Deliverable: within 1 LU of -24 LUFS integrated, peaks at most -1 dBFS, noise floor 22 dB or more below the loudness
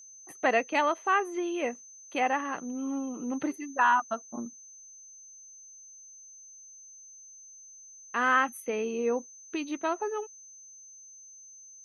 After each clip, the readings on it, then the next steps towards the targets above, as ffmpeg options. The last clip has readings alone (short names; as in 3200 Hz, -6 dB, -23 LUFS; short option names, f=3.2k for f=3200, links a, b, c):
steady tone 6200 Hz; tone level -48 dBFS; loudness -29.5 LUFS; peak -12.5 dBFS; loudness target -24.0 LUFS
-> -af "bandreject=f=6.2k:w=30"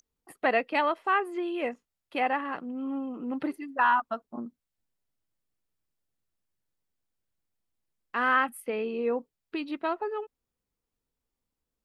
steady tone none; loudness -29.5 LUFS; peak -12.0 dBFS; loudness target -24.0 LUFS
-> -af "volume=5.5dB"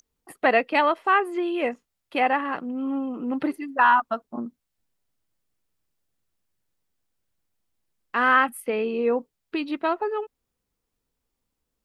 loudness -24.0 LUFS; peak -6.5 dBFS; noise floor -81 dBFS